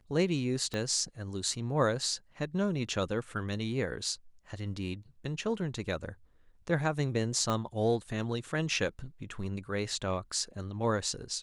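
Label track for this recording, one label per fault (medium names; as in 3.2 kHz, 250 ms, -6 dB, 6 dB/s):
0.740000	0.740000	pop -21 dBFS
7.500000	7.500000	pop -18 dBFS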